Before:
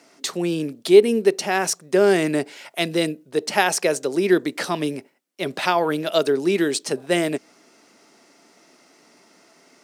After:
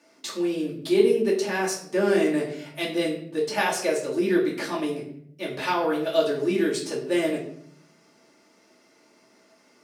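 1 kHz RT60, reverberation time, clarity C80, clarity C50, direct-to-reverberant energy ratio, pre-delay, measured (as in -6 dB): 0.55 s, 0.65 s, 10.0 dB, 6.5 dB, -6.0 dB, 3 ms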